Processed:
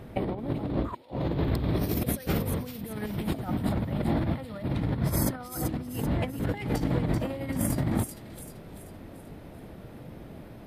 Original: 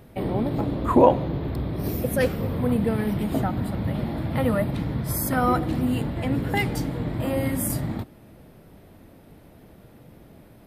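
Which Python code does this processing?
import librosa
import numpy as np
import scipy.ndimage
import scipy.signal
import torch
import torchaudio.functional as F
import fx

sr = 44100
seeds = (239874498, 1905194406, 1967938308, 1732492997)

y = fx.high_shelf(x, sr, hz=3000.0, db=9.0, at=(1.2, 3.34))
y = fx.wow_flutter(y, sr, seeds[0], rate_hz=2.1, depth_cents=25.0)
y = fx.high_shelf(y, sr, hz=6300.0, db=-10.0)
y = fx.over_compress(y, sr, threshold_db=-29.0, ratio=-0.5)
y = fx.echo_wet_highpass(y, sr, ms=387, feedback_pct=44, hz=3400.0, wet_db=-5.0)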